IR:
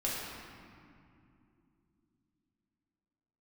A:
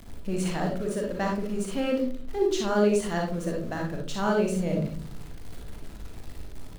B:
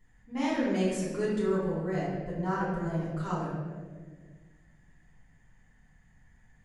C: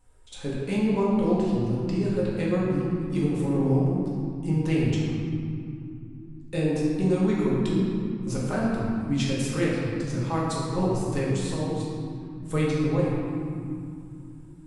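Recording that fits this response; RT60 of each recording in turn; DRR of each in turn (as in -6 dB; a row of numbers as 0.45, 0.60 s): C; 0.45, 1.6, 2.7 s; -0.5, -11.0, -6.5 dB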